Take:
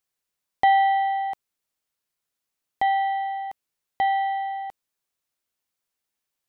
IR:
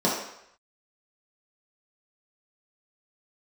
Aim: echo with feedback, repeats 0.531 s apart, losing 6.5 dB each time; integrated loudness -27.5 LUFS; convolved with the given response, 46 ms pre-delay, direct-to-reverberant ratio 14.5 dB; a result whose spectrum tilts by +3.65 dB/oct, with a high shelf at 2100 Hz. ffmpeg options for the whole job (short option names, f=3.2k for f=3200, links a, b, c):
-filter_complex "[0:a]highshelf=f=2.1k:g=6.5,aecho=1:1:531|1062|1593|2124|2655|3186:0.473|0.222|0.105|0.0491|0.0231|0.0109,asplit=2[a][b];[1:a]atrim=start_sample=2205,adelay=46[c];[b][c]afir=irnorm=-1:irlink=0,volume=-29.5dB[d];[a][d]amix=inputs=2:normalize=0,volume=-5dB"